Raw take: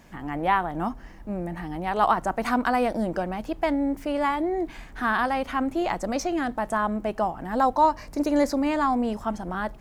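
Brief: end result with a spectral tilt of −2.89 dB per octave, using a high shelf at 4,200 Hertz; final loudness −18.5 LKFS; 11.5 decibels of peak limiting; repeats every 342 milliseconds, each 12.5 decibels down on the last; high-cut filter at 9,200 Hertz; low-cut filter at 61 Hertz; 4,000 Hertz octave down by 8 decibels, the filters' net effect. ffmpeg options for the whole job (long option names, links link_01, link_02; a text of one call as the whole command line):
ffmpeg -i in.wav -af "highpass=61,lowpass=9200,equalizer=frequency=4000:width_type=o:gain=-7,highshelf=frequency=4200:gain=-7.5,alimiter=limit=-21dB:level=0:latency=1,aecho=1:1:342|684|1026:0.237|0.0569|0.0137,volume=11.5dB" out.wav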